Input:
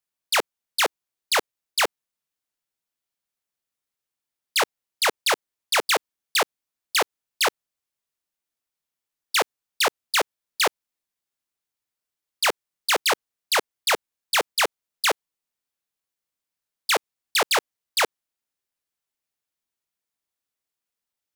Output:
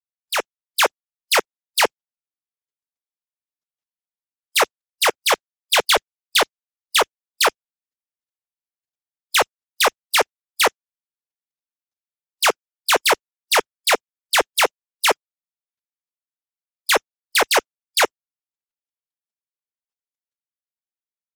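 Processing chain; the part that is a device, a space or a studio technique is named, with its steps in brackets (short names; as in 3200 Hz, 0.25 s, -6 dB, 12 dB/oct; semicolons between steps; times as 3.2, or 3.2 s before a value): spectral noise reduction 23 dB; 5.31–7 dynamic EQ 3500 Hz, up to +6 dB, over -39 dBFS, Q 3.1; noise-suppressed video call (HPF 140 Hz 12 dB/oct; spectral gate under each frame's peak -30 dB strong; AGC gain up to 9.5 dB; gain -2 dB; Opus 20 kbps 48000 Hz)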